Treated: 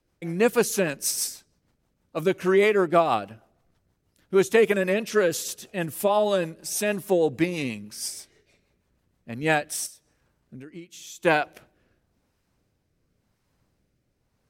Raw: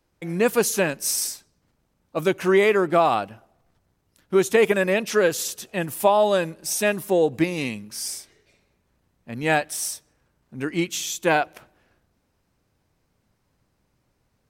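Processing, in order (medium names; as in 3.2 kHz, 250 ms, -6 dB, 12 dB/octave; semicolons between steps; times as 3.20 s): 9.86–11.25 s: compression 10:1, threshold -37 dBFS, peak gain reduction 18.5 dB; rotary cabinet horn 6.3 Hz, later 0.9 Hz, at 9.24 s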